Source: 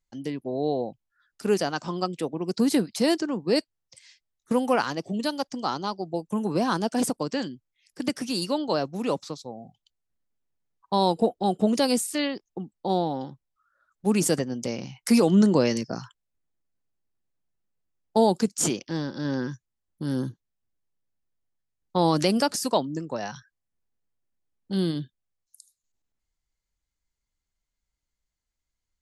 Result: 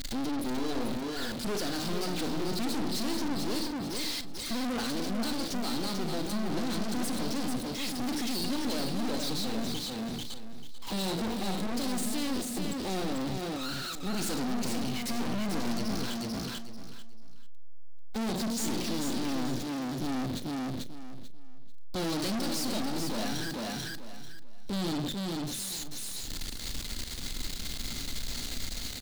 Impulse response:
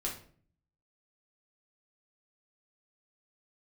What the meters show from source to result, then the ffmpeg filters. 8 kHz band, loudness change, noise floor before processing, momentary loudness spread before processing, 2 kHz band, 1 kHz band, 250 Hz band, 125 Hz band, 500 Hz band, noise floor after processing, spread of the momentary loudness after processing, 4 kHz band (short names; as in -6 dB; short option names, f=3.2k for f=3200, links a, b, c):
-2.5 dB, -7.0 dB, -84 dBFS, 12 LU, -2.5 dB, -8.5 dB, -5.5 dB, -5.0 dB, -10.5 dB, -37 dBFS, 6 LU, 0.0 dB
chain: -filter_complex "[0:a]aeval=exprs='val(0)+0.5*0.0376*sgn(val(0))':c=same,equalizer=f=250:t=o:w=0.67:g=11,equalizer=f=1k:t=o:w=0.67:g=-6,equalizer=f=4k:t=o:w=0.67:g=11,asplit=2[a][b];[1:a]atrim=start_sample=2205,adelay=36[c];[b][c]afir=irnorm=-1:irlink=0,volume=-11.5dB[d];[a][d]amix=inputs=2:normalize=0,aeval=exprs='(tanh(31.6*val(0)+0.75)-tanh(0.75))/31.6':c=same,aecho=1:1:441|882|1323:0.562|0.135|0.0324,asplit=2[e][f];[f]alimiter=level_in=8.5dB:limit=-24dB:level=0:latency=1:release=28,volume=-8.5dB,volume=2.5dB[g];[e][g]amix=inputs=2:normalize=0,volume=-5dB"